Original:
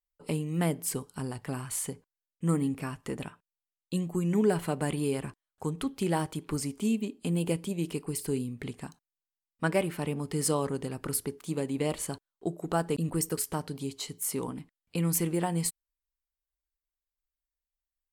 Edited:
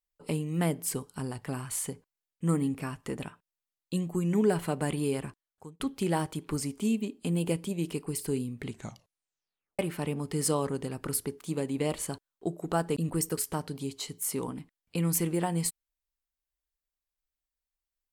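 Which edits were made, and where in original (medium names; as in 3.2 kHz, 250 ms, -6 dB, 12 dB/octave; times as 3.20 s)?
5.19–5.80 s: fade out
8.66 s: tape stop 1.13 s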